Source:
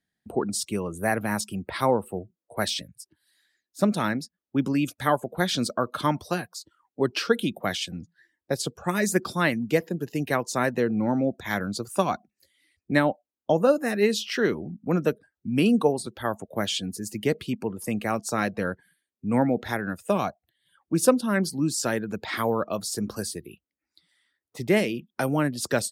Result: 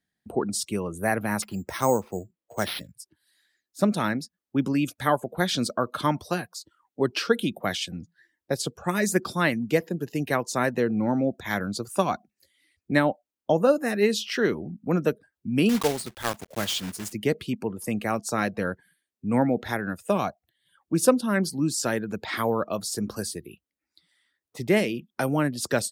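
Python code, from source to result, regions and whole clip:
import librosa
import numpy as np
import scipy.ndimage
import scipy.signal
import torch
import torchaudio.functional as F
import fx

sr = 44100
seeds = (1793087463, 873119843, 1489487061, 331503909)

y = fx.chain(x, sr, fx.lowpass(hz=3600.0, slope=6),
    fx.resample_bad(factor=6, down='none', up='hold'), at=(1.42, 2.94))
y = fx.chain(y, sr, fx.block_float(bits=3),
    fx.peak_eq(hz=400.0, db=-3.5, octaves=2.5), at=(15.69, 17.13))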